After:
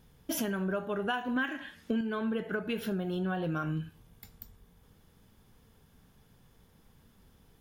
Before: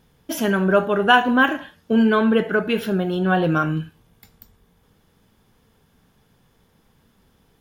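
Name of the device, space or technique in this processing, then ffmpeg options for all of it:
ASMR close-microphone chain: -filter_complex "[0:a]asettb=1/sr,asplit=3[a][b][c];[a]atrim=end=1.364[d];[b]atrim=start=1.36:end=2.01,asetpts=PTS-STARTPTS,afade=t=in:d=0.004:c=qsin,afade=t=out:st=0.646:d=0.004:c=qsin,equalizer=f=125:t=o:w=1:g=-5,equalizer=f=250:t=o:w=1:g=7,equalizer=f=2k:t=o:w=1:g=11,equalizer=f=4k:t=o:w=1:g=4,equalizer=f=8k:t=o:w=1:g=6[e];[c]atrim=start=2.006[f];[d][e]acrossfade=d=0.004:c1=hsin:c2=qsin[g];[g][f]acrossfade=d=0.004:c1=qsin:c2=hsin,lowshelf=f=130:g=7,acompressor=threshold=-25dB:ratio=6,highshelf=f=6.6k:g=4.5,volume=-5dB"

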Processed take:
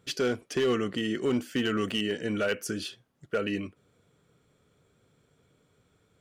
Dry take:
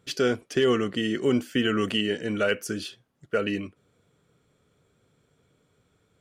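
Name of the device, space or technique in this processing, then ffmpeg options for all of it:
clipper into limiter: -af "asoftclip=type=hard:threshold=-17dB,alimiter=limit=-20.5dB:level=0:latency=1:release=167"

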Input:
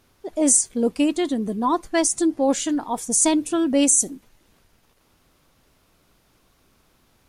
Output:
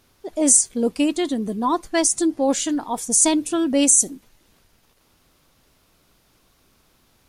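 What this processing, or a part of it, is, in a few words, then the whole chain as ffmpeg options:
presence and air boost: -af "equalizer=f=4.4k:t=o:w=1.4:g=2.5,highshelf=f=9.3k:g=4"

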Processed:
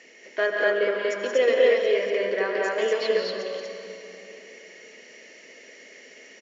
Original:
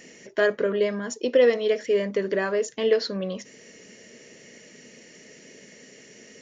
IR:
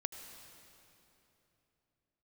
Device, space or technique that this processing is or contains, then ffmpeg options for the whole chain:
station announcement: -filter_complex "[0:a]highpass=450,lowpass=4.6k,equalizer=f=2.2k:t=o:w=0.24:g=4,aecho=1:1:142.9|177.8|239.1:0.316|0.501|1[a];[1:a]atrim=start_sample=2205[b];[a][b]afir=irnorm=-1:irlink=0"

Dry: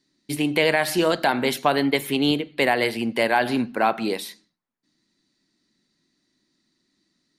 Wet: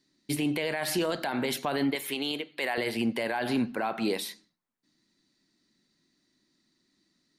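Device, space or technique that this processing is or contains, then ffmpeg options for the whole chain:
stacked limiters: -filter_complex "[0:a]asettb=1/sr,asplit=3[a][b][c];[a]atrim=end=1.954[d];[b]atrim=start=1.95:end=2.78,asetpts=PTS-STARTPTS,afade=t=in:d=0.004:c=qsin,afade=t=out:st=0.826:d=0.004:c=qsin,highpass=f=730:p=1[e];[c]atrim=start=2.776[f];[d][e]acrossfade=d=0.004:c1=hsin:c2=qsin[g];[g][f]acrossfade=d=0.004:c1=qsin:c2=hsin,alimiter=limit=-12dB:level=0:latency=1:release=183,alimiter=limit=-18dB:level=0:latency=1:release=16,volume=-1.5dB"

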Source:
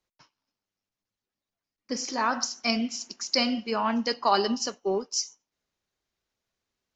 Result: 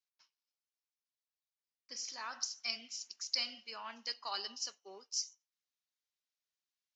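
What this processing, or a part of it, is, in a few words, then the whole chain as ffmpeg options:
piezo pickup straight into a mixer: -af "lowpass=5.2k,aderivative,volume=-2dB"

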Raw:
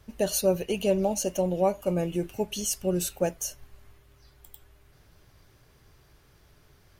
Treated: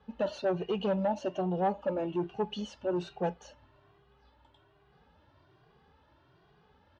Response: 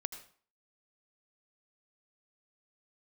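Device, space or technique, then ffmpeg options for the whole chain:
barber-pole flanger into a guitar amplifier: -filter_complex "[0:a]asplit=2[a][b];[b]adelay=2,afreqshift=1.2[c];[a][c]amix=inputs=2:normalize=1,asoftclip=type=tanh:threshold=-25dB,highpass=91,equalizer=f=110:t=q:w=4:g=-7,equalizer=f=870:t=q:w=4:g=8,equalizer=f=2.2k:t=q:w=4:g=-9,lowpass=f=3.5k:w=0.5412,lowpass=f=3.5k:w=1.3066,volume=1dB"

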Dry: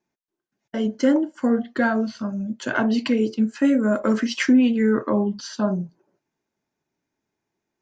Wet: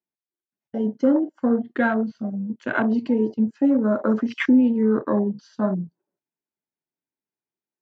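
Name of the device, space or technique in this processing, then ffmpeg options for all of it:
over-cleaned archive recording: -af "highpass=110,lowpass=6k,afwtdn=0.0355"

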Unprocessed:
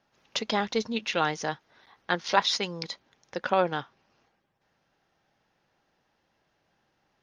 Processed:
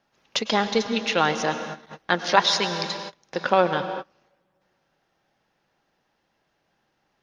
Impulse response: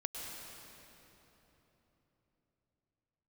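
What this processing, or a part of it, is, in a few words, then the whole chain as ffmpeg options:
keyed gated reverb: -filter_complex "[0:a]equalizer=f=90:t=o:w=0.77:g=-4.5,asplit=3[a][b][c];[1:a]atrim=start_sample=2205[d];[b][d]afir=irnorm=-1:irlink=0[e];[c]apad=whole_len=318678[f];[e][f]sidechaingate=range=-33dB:threshold=-55dB:ratio=16:detection=peak,volume=-2dB[g];[a][g]amix=inputs=2:normalize=0,volume=1dB"

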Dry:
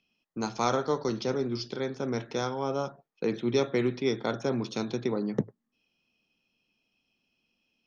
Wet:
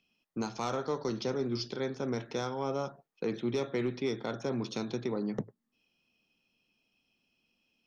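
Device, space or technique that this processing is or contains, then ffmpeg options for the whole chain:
soft clipper into limiter: -af "asoftclip=type=tanh:threshold=-16.5dB,alimiter=limit=-23.5dB:level=0:latency=1:release=335"

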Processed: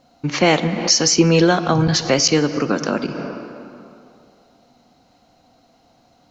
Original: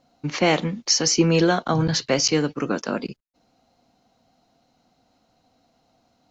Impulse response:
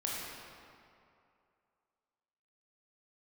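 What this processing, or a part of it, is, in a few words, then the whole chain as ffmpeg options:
ducked reverb: -filter_complex "[0:a]asplit=3[a][b][c];[1:a]atrim=start_sample=2205[d];[b][d]afir=irnorm=-1:irlink=0[e];[c]apad=whole_len=278109[f];[e][f]sidechaincompress=threshold=-33dB:ratio=4:attack=12:release=146,volume=-4dB[g];[a][g]amix=inputs=2:normalize=0,volume=3.5dB"

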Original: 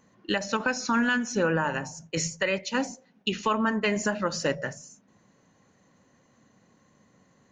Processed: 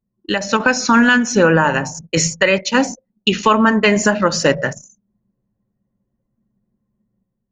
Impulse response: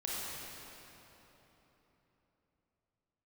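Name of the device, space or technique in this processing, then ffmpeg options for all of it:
voice memo with heavy noise removal: -af "anlmdn=0.1,dynaudnorm=f=180:g=5:m=7dB,volume=5.5dB"

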